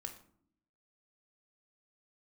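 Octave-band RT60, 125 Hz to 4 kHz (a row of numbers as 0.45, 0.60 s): 0.90, 1.0, 0.70, 0.55, 0.40, 0.35 s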